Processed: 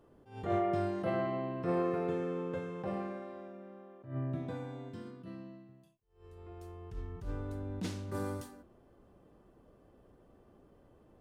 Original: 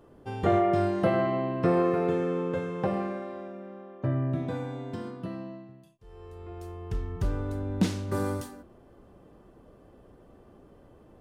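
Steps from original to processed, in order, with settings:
0:04.88–0:06.38: dynamic equaliser 790 Hz, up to −7 dB, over −56 dBFS, Q 1.3
level that may rise only so fast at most 140 dB per second
level −7.5 dB

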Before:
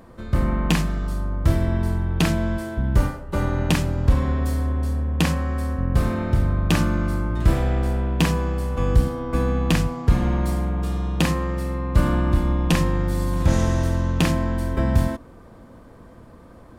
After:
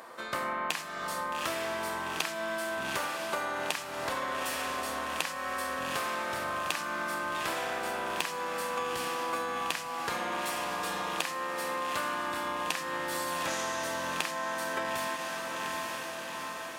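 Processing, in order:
high-pass filter 800 Hz 12 dB per octave
on a send: feedback delay with all-pass diffusion 837 ms, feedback 58%, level −10.5 dB
on the sum: downward compressor 10 to 1, threshold −37 dBFS, peak gain reduction 16.5 dB
level +7.5 dB

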